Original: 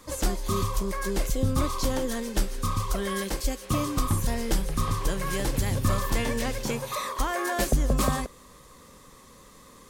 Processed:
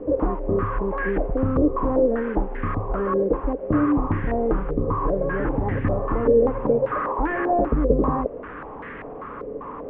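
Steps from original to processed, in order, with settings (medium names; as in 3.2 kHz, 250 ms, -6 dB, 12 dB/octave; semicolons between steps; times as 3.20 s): one-bit delta coder 16 kbps, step -40 dBFS; in parallel at +2 dB: compression, threshold -34 dBFS, peak gain reduction 15 dB; on the sum: small resonant body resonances 300/430 Hz, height 11 dB, ringing for 60 ms; step-sequenced low-pass 5.1 Hz 500–1800 Hz; trim -2 dB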